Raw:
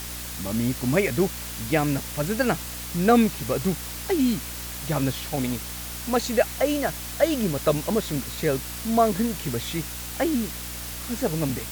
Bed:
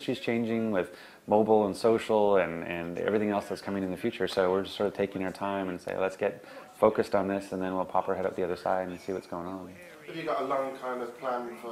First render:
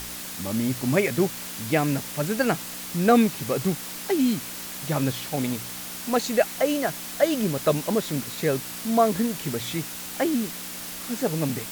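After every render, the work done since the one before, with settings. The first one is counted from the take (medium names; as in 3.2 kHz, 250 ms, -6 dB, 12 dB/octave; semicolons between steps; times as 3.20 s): de-hum 60 Hz, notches 2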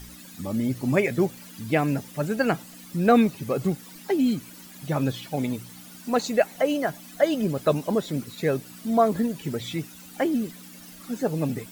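noise reduction 14 dB, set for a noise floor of -36 dBFS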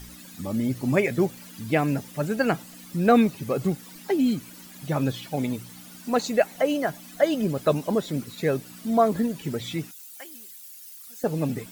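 9.91–11.24 s: differentiator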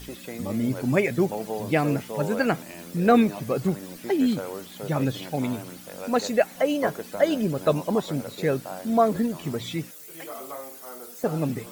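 add bed -8.5 dB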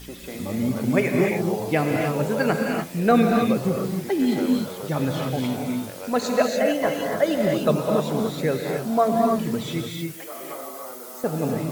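gated-style reverb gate 320 ms rising, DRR 0.5 dB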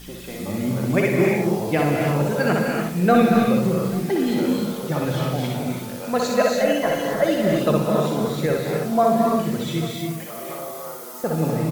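multi-tap echo 62/838 ms -3.5/-19.5 dB; simulated room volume 1900 m³, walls furnished, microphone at 0.86 m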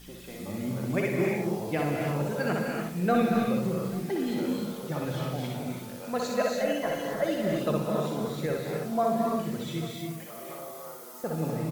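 trim -8.5 dB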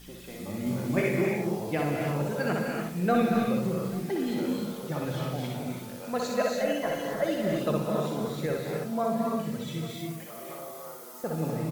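0.64–1.21 s: doubling 21 ms -3 dB; 8.84–9.89 s: comb of notches 360 Hz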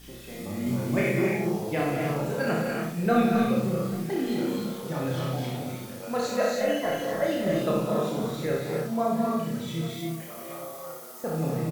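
doubling 30 ms -2.5 dB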